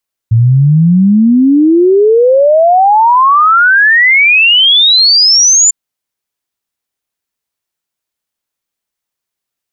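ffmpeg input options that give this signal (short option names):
-f lavfi -i "aevalsrc='0.668*clip(min(t,5.4-t)/0.01,0,1)*sin(2*PI*110*5.4/log(7200/110)*(exp(log(7200/110)*t/5.4)-1))':d=5.4:s=44100"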